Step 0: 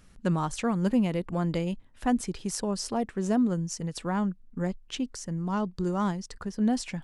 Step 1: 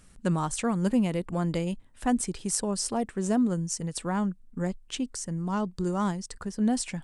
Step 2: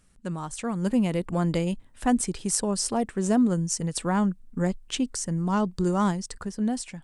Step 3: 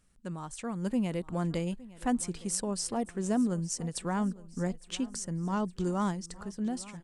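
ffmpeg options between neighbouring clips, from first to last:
ffmpeg -i in.wav -af "equalizer=frequency=8600:width_type=o:width=0.53:gain=10" out.wav
ffmpeg -i in.wav -af "dynaudnorm=framelen=190:gausssize=9:maxgain=11dB,volume=-6.5dB" out.wav
ffmpeg -i in.wav -af "aecho=1:1:863|1726|2589|3452:0.106|0.0498|0.0234|0.011,volume=-6.5dB" out.wav

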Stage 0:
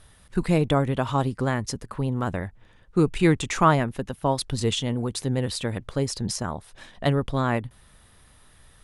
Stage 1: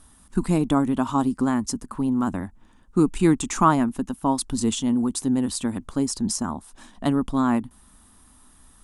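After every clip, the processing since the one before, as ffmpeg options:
ffmpeg -i in.wav -af "equalizer=frequency=125:width_type=o:width=1:gain=-11,equalizer=frequency=250:width_type=o:width=1:gain=12,equalizer=frequency=500:width_type=o:width=1:gain=-11,equalizer=frequency=1000:width_type=o:width=1:gain=5,equalizer=frequency=2000:width_type=o:width=1:gain=-8,equalizer=frequency=4000:width_type=o:width=1:gain=-5,equalizer=frequency=8000:width_type=o:width=1:gain=6,volume=1dB" out.wav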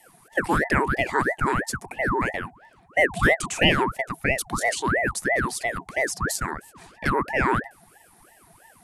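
ffmpeg -i in.wav -af "afreqshift=410,aeval=exprs='val(0)*sin(2*PI*800*n/s+800*0.7/3*sin(2*PI*3*n/s))':channel_layout=same,volume=1.5dB" out.wav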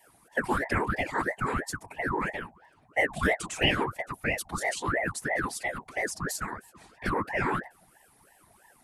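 ffmpeg -i in.wav -af "afftfilt=real='hypot(re,im)*cos(2*PI*random(0))':imag='hypot(re,im)*sin(2*PI*random(1))':win_size=512:overlap=0.75" out.wav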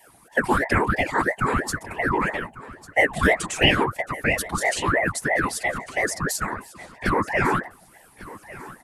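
ffmpeg -i in.wav -af "aecho=1:1:1148|2296:0.126|0.0264,volume=7dB" out.wav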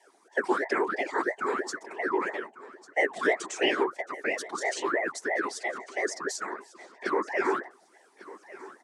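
ffmpeg -i in.wav -af "highpass=frequency=290:width=0.5412,highpass=frequency=290:width=1.3066,equalizer=frequency=390:width_type=q:width=4:gain=9,equalizer=frequency=2700:width_type=q:width=4:gain=-5,equalizer=frequency=5800:width_type=q:width=4:gain=4,lowpass=frequency=7900:width=0.5412,lowpass=frequency=7900:width=1.3066,volume=-7dB" out.wav

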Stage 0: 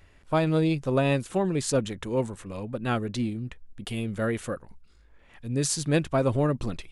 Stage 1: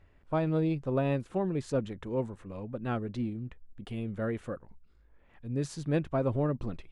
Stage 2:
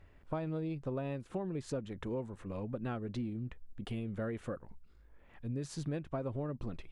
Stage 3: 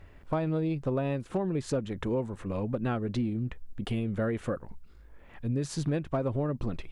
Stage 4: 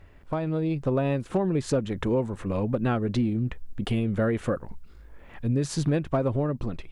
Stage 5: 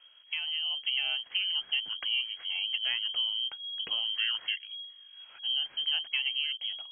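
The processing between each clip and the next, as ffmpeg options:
ffmpeg -i in.wav -af "lowpass=frequency=1300:poles=1,volume=-4.5dB" out.wav
ffmpeg -i in.wav -af "acompressor=threshold=-36dB:ratio=6,volume=1.5dB" out.wav
ffmpeg -i in.wav -af "asoftclip=type=hard:threshold=-28.5dB,volume=8dB" out.wav
ffmpeg -i in.wav -af "dynaudnorm=framelen=190:gausssize=7:maxgain=5dB" out.wav
ffmpeg -i in.wav -af "lowpass=frequency=2800:width_type=q:width=0.5098,lowpass=frequency=2800:width_type=q:width=0.6013,lowpass=frequency=2800:width_type=q:width=0.9,lowpass=frequency=2800:width_type=q:width=2.563,afreqshift=-3300,volume=-6.5dB" out.wav

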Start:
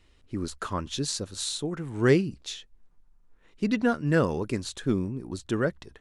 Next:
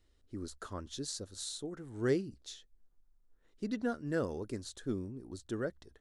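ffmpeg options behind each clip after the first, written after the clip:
ffmpeg -i in.wav -af "equalizer=frequency=160:width_type=o:width=0.67:gain=-7,equalizer=frequency=1000:width_type=o:width=0.67:gain=-6,equalizer=frequency=2500:width_type=o:width=0.67:gain=-10,volume=-8.5dB" out.wav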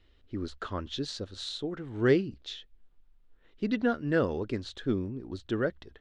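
ffmpeg -i in.wav -af "lowpass=frequency=3100:width_type=q:width=1.8,volume=7dB" out.wav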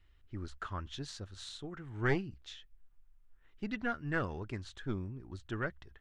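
ffmpeg -i in.wav -af "aeval=exprs='0.237*(cos(1*acos(clip(val(0)/0.237,-1,1)))-cos(1*PI/2))+0.0473*(cos(2*acos(clip(val(0)/0.237,-1,1)))-cos(2*PI/2))+0.00376*(cos(7*acos(clip(val(0)/0.237,-1,1)))-cos(7*PI/2))':channel_layout=same,equalizer=frequency=250:width_type=o:width=1:gain=-8,equalizer=frequency=500:width_type=o:width=1:gain=-11,equalizer=frequency=4000:width_type=o:width=1:gain=-9" out.wav

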